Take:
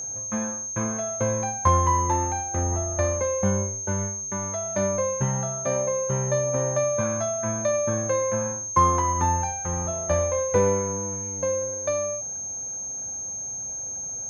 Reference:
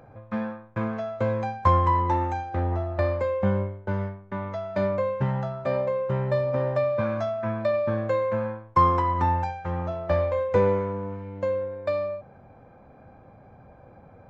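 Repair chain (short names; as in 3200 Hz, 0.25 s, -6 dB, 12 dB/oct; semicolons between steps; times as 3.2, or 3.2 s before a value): notch 6400 Hz, Q 30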